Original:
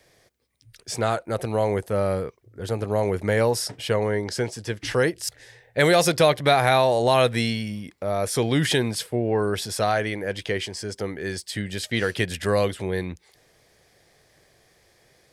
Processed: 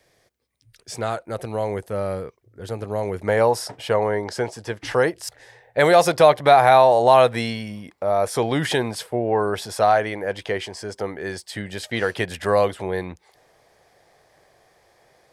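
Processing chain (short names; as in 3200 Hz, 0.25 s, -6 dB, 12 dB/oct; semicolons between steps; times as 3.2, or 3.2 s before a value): bell 830 Hz +2 dB 1.7 oct, from 3.27 s +11.5 dB; gain -3.5 dB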